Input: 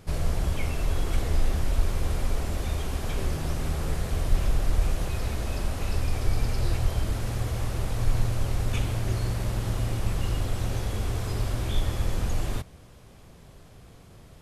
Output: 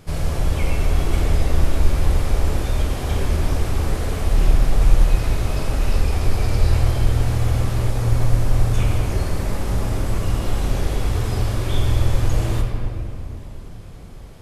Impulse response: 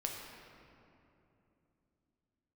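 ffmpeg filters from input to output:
-filter_complex "[0:a]asettb=1/sr,asplit=3[link_01][link_02][link_03];[link_01]atrim=end=7.904[link_04];[link_02]atrim=start=7.9:end=10.4,asetpts=PTS-STARTPTS,afade=type=in:duration=0.004:curve=qsin,afade=type=out:start_time=2.496:duration=0.004:curve=qsin,acrossover=split=3200[link_05][link_06];[link_05]adelay=50[link_07];[link_07][link_06]amix=inputs=2:normalize=0,atrim=end_sample=110250[link_08];[link_03]atrim=start=10.396[link_09];[link_04][link_08]acrossfade=duration=0.004:curve1=hsin:curve2=qsin[link_10];[link_10][link_09]acrossfade=duration=0.004:curve1=qsin:curve2=hsin[link_11];[1:a]atrim=start_sample=2205[link_12];[link_11][link_12]afir=irnorm=-1:irlink=0,volume=5.5dB"

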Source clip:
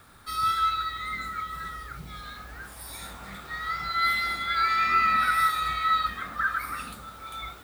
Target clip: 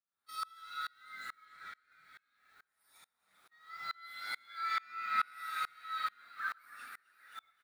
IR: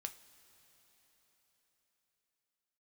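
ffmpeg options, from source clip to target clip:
-filter_complex "[0:a]highpass=frequency=790:poles=1,agate=range=-13dB:threshold=-38dB:ratio=16:detection=peak,asettb=1/sr,asplit=3[link_01][link_02][link_03];[link_01]atrim=end=1.454[link_04];[link_02]atrim=start=1.45:end=1.91,asetpts=PTS-STARTPTS,afade=type=in:duration=0.004:curve=qsin,afade=type=out:start_time=0.456:duration=0.004:curve=qsin,lowpass=6000[link_05];[link_03]atrim=start=1.906[link_06];[link_04][link_05]acrossfade=duration=0.004:curve1=hsin:curve2=qsin[link_07];[link_07][link_06]acrossfade=duration=0.004:curve1=qsin:curve2=hsin,asplit=6[link_08][link_09][link_10][link_11][link_12][link_13];[link_09]adelay=264,afreqshift=120,volume=-9.5dB[link_14];[link_10]adelay=528,afreqshift=240,volume=-16.1dB[link_15];[link_11]adelay=792,afreqshift=360,volume=-22.6dB[link_16];[link_12]adelay=1056,afreqshift=480,volume=-29.2dB[link_17];[link_13]adelay=1320,afreqshift=600,volume=-35.7dB[link_18];[link_08][link_14][link_15][link_16][link_17][link_18]amix=inputs=6:normalize=0[link_19];[1:a]atrim=start_sample=2205[link_20];[link_19][link_20]afir=irnorm=-1:irlink=0,aeval=exprs='val(0)*pow(10,-31*if(lt(mod(-2.3*n/s,1),2*abs(-2.3)/1000),1-mod(-2.3*n/s,1)/(2*abs(-2.3)/1000),(mod(-2.3*n/s,1)-2*abs(-2.3)/1000)/(1-2*abs(-2.3)/1000))/20)':channel_layout=same,volume=-2dB"

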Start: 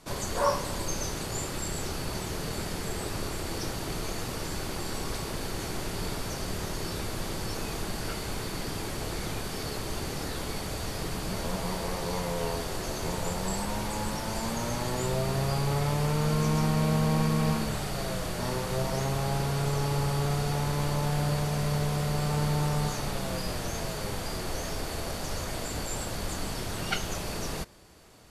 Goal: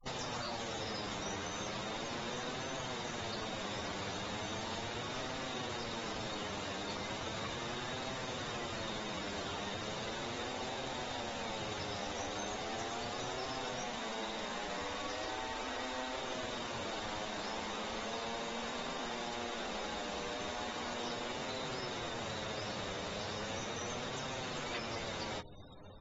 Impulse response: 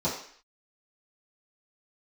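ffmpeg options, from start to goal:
-filter_complex "[0:a]adynamicequalizer=threshold=0.0126:dfrequency=170:dqfactor=1.2:tfrequency=170:tqfactor=1.2:attack=5:release=100:ratio=0.375:range=2:mode=boostabove:tftype=bell,asplit=2[link_01][link_02];[link_02]adelay=74,lowpass=frequency=850:poles=1,volume=-16dB,asplit=2[link_03][link_04];[link_04]adelay=74,lowpass=frequency=850:poles=1,volume=0.54,asplit=2[link_05][link_06];[link_06]adelay=74,lowpass=frequency=850:poles=1,volume=0.54,asplit=2[link_07][link_08];[link_08]adelay=74,lowpass=frequency=850:poles=1,volume=0.54,asplit=2[link_09][link_10];[link_10]adelay=74,lowpass=frequency=850:poles=1,volume=0.54[link_11];[link_01][link_03][link_05][link_07][link_09][link_11]amix=inputs=6:normalize=0,flanger=delay=1.4:depth=9:regen=83:speed=1.1:shape=sinusoidal,areverse,acompressor=mode=upward:threshold=-48dB:ratio=2.5,areverse,afftfilt=real='re*lt(hypot(re,im),0.0631)':imag='im*lt(hypot(re,im),0.0631)':win_size=1024:overlap=0.75,asetrate=33038,aresample=44100,atempo=1.33484,equalizer=frequency=300:width_type=o:width=0.55:gain=-4.5,flanger=delay=8.2:depth=2.9:regen=33:speed=0.34:shape=triangular,afftfilt=real='re*gte(hypot(re,im),0.00141)':imag='im*gte(hypot(re,im),0.00141)':win_size=1024:overlap=0.75,acrossover=split=420|1500|3900[link_12][link_13][link_14][link_15];[link_12]acompressor=threshold=-55dB:ratio=4[link_16];[link_13]acompressor=threshold=-53dB:ratio=4[link_17];[link_14]acompressor=threshold=-55dB:ratio=4[link_18];[link_15]acompressor=threshold=-59dB:ratio=4[link_19];[link_16][link_17][link_18][link_19]amix=inputs=4:normalize=0,asetrate=48000,aresample=44100,volume=8dB" -ar 48000 -c:a aac -b:a 24k

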